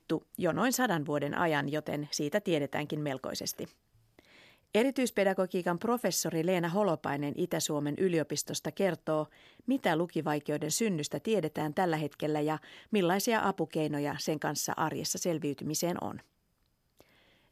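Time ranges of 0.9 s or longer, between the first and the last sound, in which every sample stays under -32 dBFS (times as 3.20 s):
3.64–4.75 s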